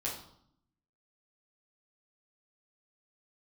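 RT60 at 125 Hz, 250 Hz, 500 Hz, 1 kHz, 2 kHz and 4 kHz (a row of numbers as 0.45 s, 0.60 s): 1.0 s, 1.0 s, 0.65 s, 0.70 s, 0.50 s, 0.55 s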